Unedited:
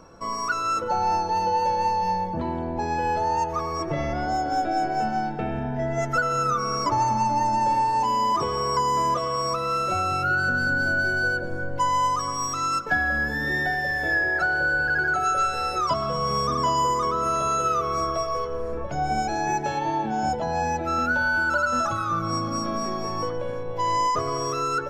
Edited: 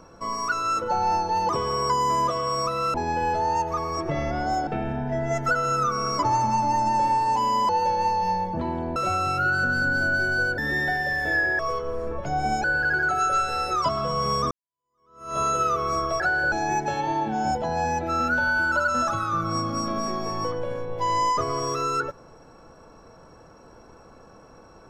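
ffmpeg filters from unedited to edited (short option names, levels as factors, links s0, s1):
-filter_complex "[0:a]asplit=12[s0][s1][s2][s3][s4][s5][s6][s7][s8][s9][s10][s11];[s0]atrim=end=1.492[s12];[s1]atrim=start=8.358:end=9.812[s13];[s2]atrim=start=2.758:end=4.492[s14];[s3]atrim=start=5.338:end=8.362[s15];[s4]atrim=start=1.488:end=2.762[s16];[s5]atrim=start=9.808:end=11.432[s17];[s6]atrim=start=13.358:end=14.372[s18];[s7]atrim=start=18.248:end=19.302[s19];[s8]atrim=start=14.688:end=16.56,asetpts=PTS-STARTPTS,afade=t=out:st=1.868:d=0.004:c=hsin[s20];[s9]atrim=start=16.56:end=18.252,asetpts=PTS-STARTPTS,afade=t=in:d=0.87:c=exp[s21];[s10]atrim=start=14.368:end=14.692[s22];[s11]atrim=start=19.298[s23];[s12][s13]acrossfade=d=0.004:c1=hsin:c2=hsin[s24];[s24][s14]acrossfade=d=0.004:c1=hsin:c2=hsin[s25];[s25][s15]acrossfade=d=0.004:c1=hsin:c2=hsin[s26];[s26][s16]acrossfade=d=0.004:c1=hsin:c2=hsin[s27];[s27][s17]acrossfade=d=0.004:c1=hsin:c2=hsin[s28];[s28][s18]acrossfade=d=0.004:c1=hsin:c2=hsin[s29];[s29][s19]acrossfade=d=0.004:c1=hsin:c2=hsin[s30];[s20][s21]concat=n=2:v=0:a=1[s31];[s30][s31]acrossfade=d=0.004:c1=hsin:c2=hsin[s32];[s32][s22]acrossfade=d=0.004:c1=hsin:c2=hsin[s33];[s33][s23]acrossfade=d=0.004:c1=hsin:c2=hsin"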